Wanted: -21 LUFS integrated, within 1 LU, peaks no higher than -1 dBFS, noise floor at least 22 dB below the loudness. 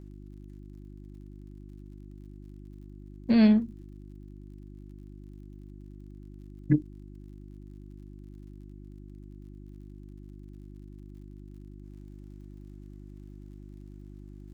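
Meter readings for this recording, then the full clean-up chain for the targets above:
tick rate 51 per s; hum 50 Hz; highest harmonic 350 Hz; hum level -44 dBFS; loudness -25.0 LUFS; peak level -11.0 dBFS; loudness target -21.0 LUFS
-> de-click; de-hum 50 Hz, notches 7; trim +4 dB

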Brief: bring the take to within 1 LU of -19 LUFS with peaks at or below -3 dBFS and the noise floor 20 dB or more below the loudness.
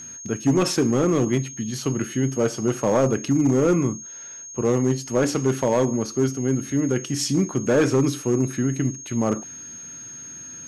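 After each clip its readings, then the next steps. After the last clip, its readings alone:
clipped samples 1.6%; clipping level -13.0 dBFS; steady tone 6.5 kHz; tone level -36 dBFS; loudness -22.5 LUFS; peak level -13.0 dBFS; loudness target -19.0 LUFS
-> clip repair -13 dBFS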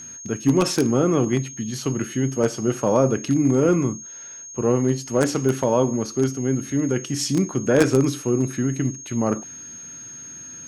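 clipped samples 0.0%; steady tone 6.5 kHz; tone level -36 dBFS
-> band-stop 6.5 kHz, Q 30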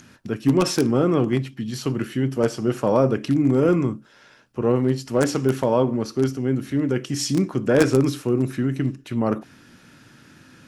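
steady tone not found; loudness -22.0 LUFS; peak level -4.0 dBFS; loudness target -19.0 LUFS
-> trim +3 dB; peak limiter -3 dBFS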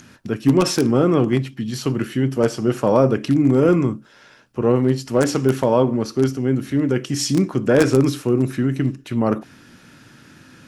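loudness -19.0 LUFS; peak level -3.0 dBFS; noise floor -49 dBFS

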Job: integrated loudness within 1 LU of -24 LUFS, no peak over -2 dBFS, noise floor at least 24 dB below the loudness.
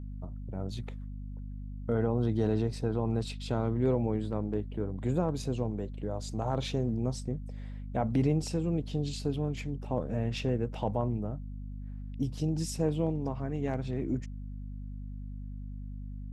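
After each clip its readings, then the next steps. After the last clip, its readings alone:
hum 50 Hz; highest harmonic 250 Hz; hum level -37 dBFS; loudness -33.5 LUFS; peak level -15.5 dBFS; loudness target -24.0 LUFS
-> hum notches 50/100/150/200/250 Hz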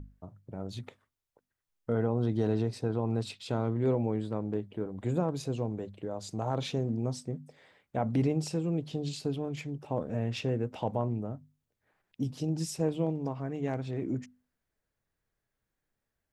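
hum not found; loudness -33.0 LUFS; peak level -16.5 dBFS; loudness target -24.0 LUFS
-> trim +9 dB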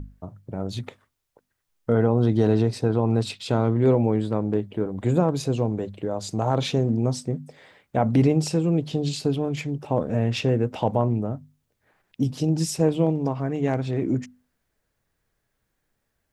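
loudness -24.0 LUFS; peak level -7.5 dBFS; noise floor -77 dBFS

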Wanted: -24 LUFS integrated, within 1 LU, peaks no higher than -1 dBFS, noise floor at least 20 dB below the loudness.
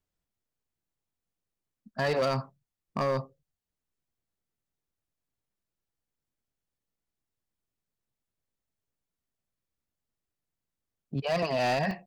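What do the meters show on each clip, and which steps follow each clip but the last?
clipped samples 0.8%; clipping level -22.5 dBFS; dropouts 1; longest dropout 1.3 ms; loudness -30.0 LUFS; peak level -22.5 dBFS; loudness target -24.0 LUFS
-> clip repair -22.5 dBFS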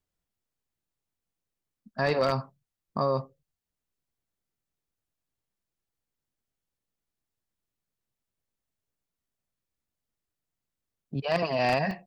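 clipped samples 0.0%; dropouts 1; longest dropout 1.3 ms
-> interpolate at 11.91 s, 1.3 ms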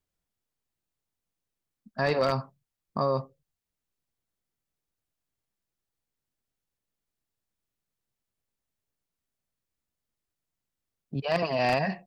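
dropouts 0; loudness -28.5 LUFS; peak level -13.5 dBFS; loudness target -24.0 LUFS
-> trim +4.5 dB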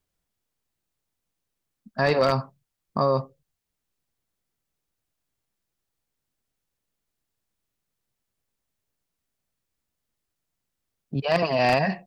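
loudness -24.0 LUFS; peak level -9.0 dBFS; noise floor -83 dBFS

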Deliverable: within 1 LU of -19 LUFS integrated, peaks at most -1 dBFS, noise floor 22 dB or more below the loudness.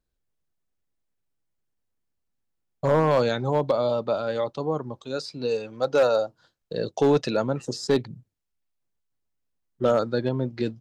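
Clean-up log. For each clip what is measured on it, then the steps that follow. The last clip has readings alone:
clipped samples 0.4%; clipping level -13.5 dBFS; loudness -25.0 LUFS; peak level -13.5 dBFS; loudness target -19.0 LUFS
-> clip repair -13.5 dBFS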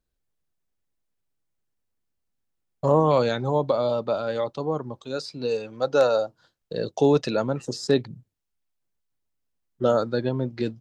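clipped samples 0.0%; loudness -24.5 LUFS; peak level -7.0 dBFS; loudness target -19.0 LUFS
-> trim +5.5 dB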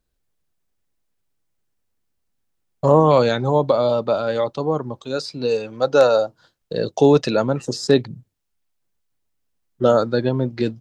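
loudness -19.0 LUFS; peak level -1.5 dBFS; noise floor -72 dBFS

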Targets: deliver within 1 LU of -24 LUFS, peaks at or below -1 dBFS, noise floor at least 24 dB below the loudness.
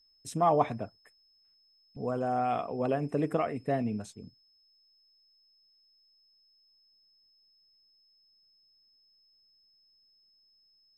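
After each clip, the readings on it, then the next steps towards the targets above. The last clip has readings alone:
steady tone 5.2 kHz; tone level -64 dBFS; loudness -31.0 LUFS; peak level -12.5 dBFS; loudness target -24.0 LUFS
-> band-stop 5.2 kHz, Q 30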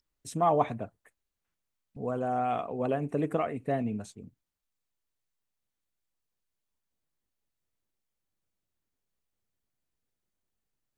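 steady tone not found; loudness -31.0 LUFS; peak level -12.5 dBFS; loudness target -24.0 LUFS
-> trim +7 dB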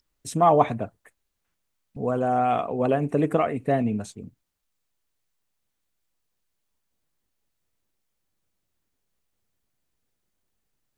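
loudness -24.0 LUFS; peak level -5.5 dBFS; noise floor -78 dBFS

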